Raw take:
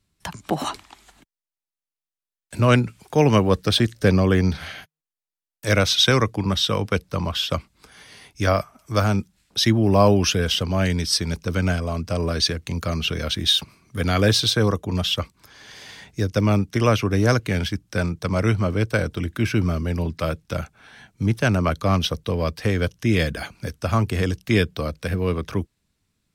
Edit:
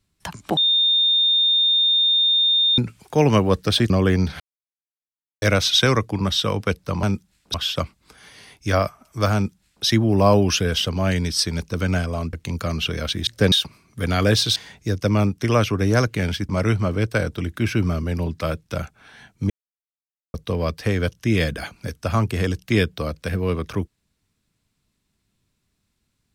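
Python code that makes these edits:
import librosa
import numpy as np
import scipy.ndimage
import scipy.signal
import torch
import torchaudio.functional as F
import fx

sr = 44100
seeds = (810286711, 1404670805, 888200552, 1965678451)

y = fx.edit(x, sr, fx.bleep(start_s=0.57, length_s=2.21, hz=3640.0, db=-14.5),
    fx.move(start_s=3.9, length_s=0.25, to_s=13.49),
    fx.silence(start_s=4.65, length_s=1.02),
    fx.duplicate(start_s=9.08, length_s=0.51, to_s=7.28),
    fx.cut(start_s=12.07, length_s=0.48),
    fx.cut(start_s=14.53, length_s=1.35),
    fx.cut(start_s=17.81, length_s=0.47),
    fx.silence(start_s=21.29, length_s=0.84), tone=tone)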